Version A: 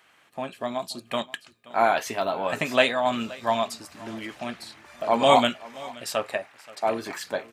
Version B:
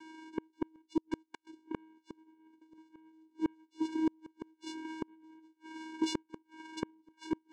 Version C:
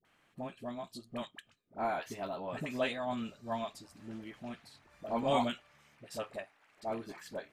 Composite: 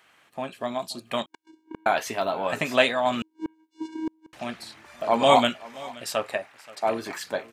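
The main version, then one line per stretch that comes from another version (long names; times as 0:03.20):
A
0:01.26–0:01.86: punch in from B
0:03.22–0:04.33: punch in from B
not used: C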